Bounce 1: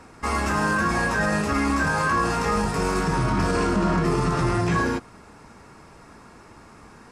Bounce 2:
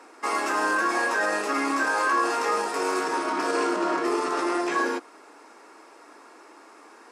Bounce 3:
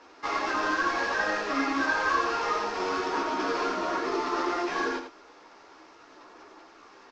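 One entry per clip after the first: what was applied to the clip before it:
elliptic high-pass 300 Hz, stop band 80 dB
CVSD coder 32 kbps; chorus voices 6, 1.3 Hz, delay 13 ms, depth 3 ms; delay 85 ms -8 dB

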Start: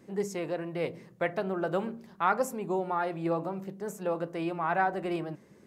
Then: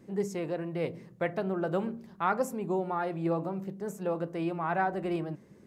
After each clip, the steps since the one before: bass shelf 350 Hz +7 dB; trim -3 dB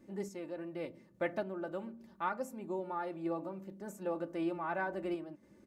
random-step tremolo; comb 3.4 ms, depth 60%; trim -5 dB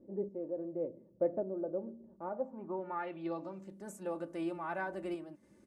low-pass sweep 510 Hz -> 10 kHz, 2.23–3.76 s; trim -2 dB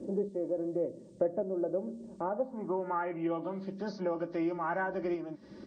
knee-point frequency compression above 1.6 kHz 1.5:1; three bands compressed up and down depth 70%; trim +5 dB

